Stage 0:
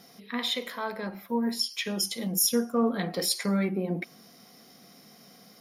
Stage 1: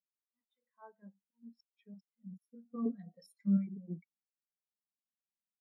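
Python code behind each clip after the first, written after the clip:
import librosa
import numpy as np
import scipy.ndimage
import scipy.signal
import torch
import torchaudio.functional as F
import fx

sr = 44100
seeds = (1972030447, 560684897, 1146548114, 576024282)

y = fx.auto_swell(x, sr, attack_ms=382.0)
y = fx.filter_lfo_notch(y, sr, shape='square', hz=4.9, low_hz=360.0, high_hz=4700.0, q=0.77)
y = fx.spectral_expand(y, sr, expansion=2.5)
y = y * 10.0 ** (-4.5 / 20.0)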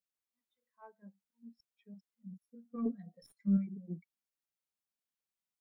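y = fx.tracing_dist(x, sr, depth_ms=0.034)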